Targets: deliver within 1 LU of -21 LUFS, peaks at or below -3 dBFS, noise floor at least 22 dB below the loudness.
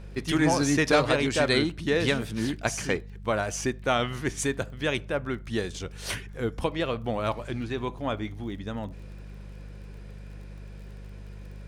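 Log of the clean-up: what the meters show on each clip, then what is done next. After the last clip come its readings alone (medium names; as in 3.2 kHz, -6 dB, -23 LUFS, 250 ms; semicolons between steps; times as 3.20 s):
tick rate 26 per s; hum 50 Hz; highest harmonic 200 Hz; hum level -40 dBFS; loudness -28.0 LUFS; peak level -9.0 dBFS; loudness target -21.0 LUFS
-> de-click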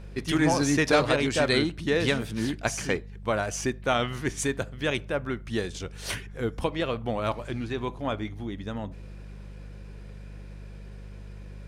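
tick rate 0.086 per s; hum 50 Hz; highest harmonic 200 Hz; hum level -40 dBFS
-> de-hum 50 Hz, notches 4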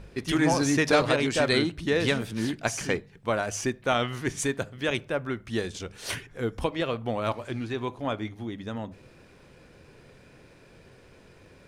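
hum not found; loudness -28.0 LUFS; peak level -9.0 dBFS; loudness target -21.0 LUFS
-> trim +7 dB; peak limiter -3 dBFS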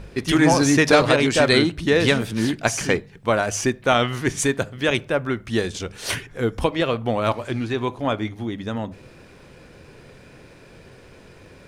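loudness -21.0 LUFS; peak level -3.0 dBFS; noise floor -48 dBFS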